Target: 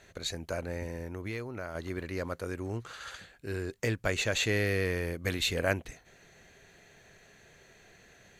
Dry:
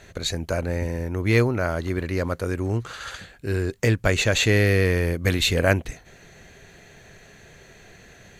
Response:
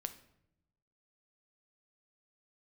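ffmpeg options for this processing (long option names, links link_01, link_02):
-filter_complex "[0:a]lowshelf=frequency=220:gain=-5.5,asettb=1/sr,asplit=3[link_01][link_02][link_03];[link_01]atrim=end=1.084[link_04];[link_02]atrim=start=1.08:end=1.75,asetpts=PTS-STARTPTS,afade=type=in:duration=0.004:curve=qsin,afade=type=out:start_time=0.666:duration=0.004:curve=qsin,acompressor=threshold=-27dB:ratio=5[link_05];[link_03]atrim=start=1.746[link_06];[link_04][link_05]acrossfade=duration=0.004:curve1=hsin:curve2=qsin[link_07];[link_07][link_06]acrossfade=duration=0.004:curve1=qsin:curve2=hsin,volume=-8dB"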